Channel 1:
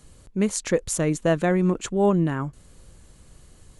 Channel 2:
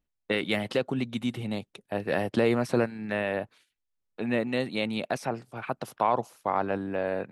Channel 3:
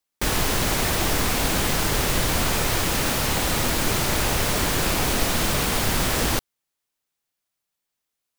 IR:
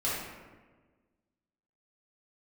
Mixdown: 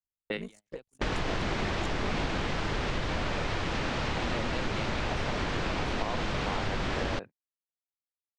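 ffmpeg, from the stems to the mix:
-filter_complex "[0:a]aeval=exprs='if(lt(val(0),0),0.708*val(0),val(0))':c=same,aeval=exprs='val(0)*sin(2*PI*26*n/s)':c=same,volume=-14.5dB,asplit=2[a][b];[1:a]bandreject=f=50:t=h:w=6,bandreject=f=100:t=h:w=6,bandreject=f=150:t=h:w=6,bandreject=f=200:t=h:w=6,bandreject=f=250:t=h:w=6,volume=-4dB[c];[2:a]lowpass=3.4k,adelay=800,volume=-1dB[d];[b]apad=whole_len=322745[e];[c][e]sidechaincompress=threshold=-52dB:ratio=16:attack=25:release=1080[f];[f][d]amix=inputs=2:normalize=0,lowpass=f=7.8k:w=0.5412,lowpass=f=7.8k:w=1.3066,acompressor=threshold=-28dB:ratio=4,volume=0dB[g];[a][g]amix=inputs=2:normalize=0,agate=range=-38dB:threshold=-40dB:ratio=16:detection=peak"

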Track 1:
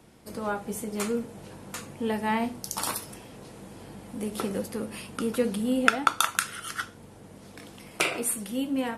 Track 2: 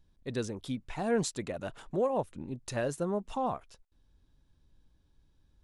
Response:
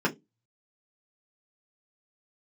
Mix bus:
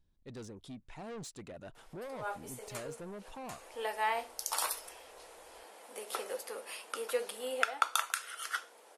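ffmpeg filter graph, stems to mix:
-filter_complex "[0:a]highpass=f=500:w=0.5412,highpass=f=500:w=1.3066,adelay=1750,volume=-3dB[a];[1:a]asoftclip=type=tanh:threshold=-33.5dB,volume=-7.5dB,asplit=2[b][c];[c]apad=whole_len=472964[d];[a][d]sidechaincompress=threshold=-53dB:ratio=8:attack=27:release=123[e];[e][b]amix=inputs=2:normalize=0,alimiter=limit=-11dB:level=0:latency=1:release=447"

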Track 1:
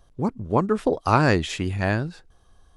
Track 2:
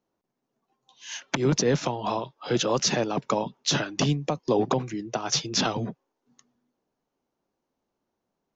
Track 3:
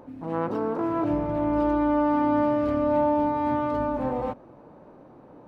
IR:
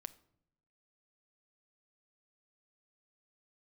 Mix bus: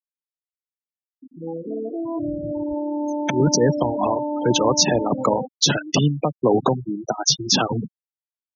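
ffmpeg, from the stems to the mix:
-filter_complex "[0:a]asoftclip=type=tanh:threshold=-13.5dB,equalizer=f=160:t=o:w=0.64:g=-5,volume=-19dB[a];[1:a]dynaudnorm=f=360:g=7:m=6dB,adelay=1950,volume=-2dB,asplit=2[b][c];[c]volume=-8dB[d];[2:a]equalizer=f=1.2k:t=o:w=0.65:g=-8.5,adelay=1150,volume=0.5dB,asplit=3[e][f][g];[f]volume=-16.5dB[h];[g]volume=-22dB[i];[a][e]amix=inputs=2:normalize=0,highshelf=f=6.8k:g=10,alimiter=limit=-17.5dB:level=0:latency=1:release=155,volume=0dB[j];[3:a]atrim=start_sample=2205[k];[d][h]amix=inputs=2:normalize=0[l];[l][k]afir=irnorm=-1:irlink=0[m];[i]aecho=0:1:1130:1[n];[b][j][m][n]amix=inputs=4:normalize=0,highshelf=f=2.4k:g=3,afftfilt=real='re*gte(hypot(re,im),0.158)':imag='im*gte(hypot(re,im),0.158)':win_size=1024:overlap=0.75"

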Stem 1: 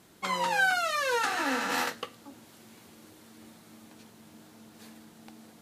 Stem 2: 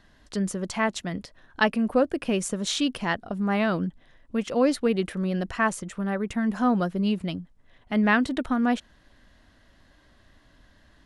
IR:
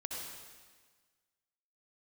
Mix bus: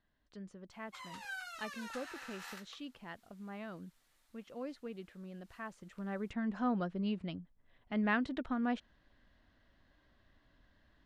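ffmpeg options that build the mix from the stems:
-filter_complex "[0:a]highpass=1.1k,adelay=700,volume=-17dB[a];[1:a]lowpass=4.4k,volume=-11dB,afade=t=in:st=5.67:d=0.55:silence=0.298538[b];[a][b]amix=inputs=2:normalize=0"

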